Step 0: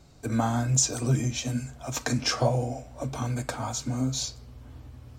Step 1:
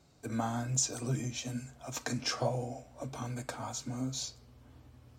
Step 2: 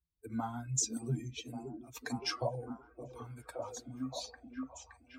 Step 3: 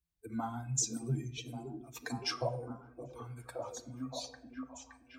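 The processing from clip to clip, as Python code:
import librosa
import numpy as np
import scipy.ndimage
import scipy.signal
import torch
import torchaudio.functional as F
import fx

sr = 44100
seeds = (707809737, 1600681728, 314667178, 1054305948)

y1 = fx.highpass(x, sr, hz=120.0, slope=6)
y1 = y1 * librosa.db_to_amplitude(-7.0)
y2 = fx.bin_expand(y1, sr, power=2.0)
y2 = fx.echo_stepped(y2, sr, ms=569, hz=300.0, octaves=0.7, feedback_pct=70, wet_db=-1.5)
y3 = fx.room_shoebox(y2, sr, seeds[0], volume_m3=2200.0, walls='furnished', distance_m=0.75)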